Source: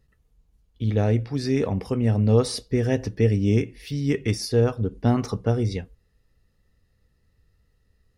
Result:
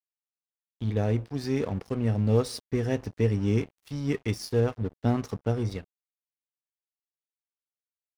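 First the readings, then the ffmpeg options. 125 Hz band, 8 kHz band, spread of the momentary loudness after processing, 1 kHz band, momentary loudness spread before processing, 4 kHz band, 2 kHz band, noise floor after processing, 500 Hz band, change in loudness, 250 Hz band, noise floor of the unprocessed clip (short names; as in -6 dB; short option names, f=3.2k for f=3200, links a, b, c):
-5.0 dB, -7.0 dB, 6 LU, -4.5 dB, 6 LU, -6.5 dB, -4.5 dB, under -85 dBFS, -5.0 dB, -5.0 dB, -5.0 dB, -67 dBFS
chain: -af "aeval=exprs='sgn(val(0))*max(abs(val(0))-0.0126,0)':c=same,volume=-4dB"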